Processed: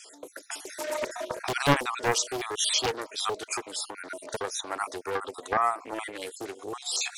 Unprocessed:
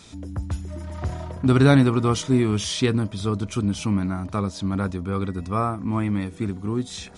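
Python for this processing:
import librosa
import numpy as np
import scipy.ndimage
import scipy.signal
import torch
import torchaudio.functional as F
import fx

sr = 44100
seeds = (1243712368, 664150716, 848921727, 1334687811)

y = fx.spec_dropout(x, sr, seeds[0], share_pct=44)
y = fx.recorder_agc(y, sr, target_db=-13.5, rise_db_per_s=19.0, max_gain_db=30)
y = scipy.signal.sosfilt(scipy.signal.butter(6, 410.0, 'highpass', fs=sr, output='sos'), y)
y = fx.high_shelf(y, sr, hz=6500.0, db=9.5)
y = fx.doppler_dist(y, sr, depth_ms=0.71)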